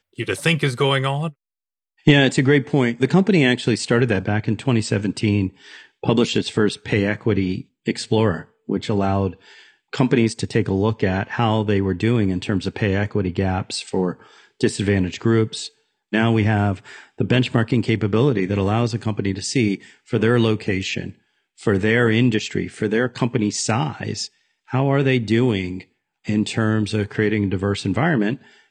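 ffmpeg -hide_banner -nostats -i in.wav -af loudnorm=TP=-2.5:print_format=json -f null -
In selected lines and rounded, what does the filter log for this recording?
"input_i" : "-20.5",
"input_tp" : "-1.6",
"input_lra" : "3.8",
"input_thresh" : "-30.9",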